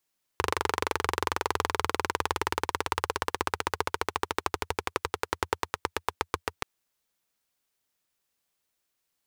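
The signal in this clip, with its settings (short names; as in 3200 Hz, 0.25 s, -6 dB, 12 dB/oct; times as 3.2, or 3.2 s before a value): single-cylinder engine model, changing speed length 6.23 s, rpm 2900, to 800, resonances 85/430/930 Hz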